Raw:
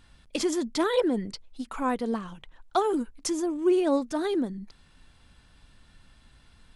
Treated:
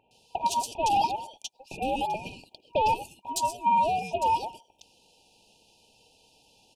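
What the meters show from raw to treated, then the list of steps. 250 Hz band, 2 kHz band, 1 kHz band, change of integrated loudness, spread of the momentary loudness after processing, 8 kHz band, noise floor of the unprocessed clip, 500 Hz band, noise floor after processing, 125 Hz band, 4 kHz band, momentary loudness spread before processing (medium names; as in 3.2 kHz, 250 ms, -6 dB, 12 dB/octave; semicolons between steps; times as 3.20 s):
-14.0 dB, -0.5 dB, +9.0 dB, 0.0 dB, 15 LU, +0.5 dB, -59 dBFS, -6.5 dB, -67 dBFS, +1.0 dB, +1.0 dB, 14 LU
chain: bass shelf 430 Hz +9.5 dB; bands offset in time lows, highs 110 ms, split 1.2 kHz; dynamic bell 660 Hz, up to +7 dB, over -39 dBFS, Q 1.9; peak limiter -14.5 dBFS, peak gain reduction 7.5 dB; saturation -18.5 dBFS, distortion -16 dB; ring modulator 1.3 kHz; FFT band-reject 950–2400 Hz; trim +6.5 dB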